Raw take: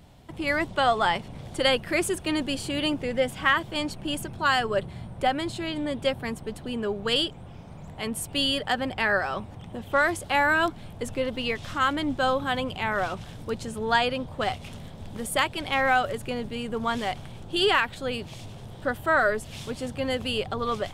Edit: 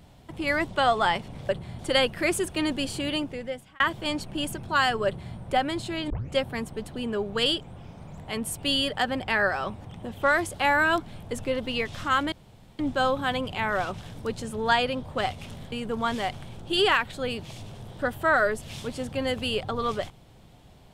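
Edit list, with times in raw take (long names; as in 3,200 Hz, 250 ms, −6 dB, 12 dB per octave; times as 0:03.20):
0:02.68–0:03.50: fade out
0:04.76–0:05.06: duplicate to 0:01.49
0:05.80: tape start 0.25 s
0:12.02: splice in room tone 0.47 s
0:14.95–0:16.55: remove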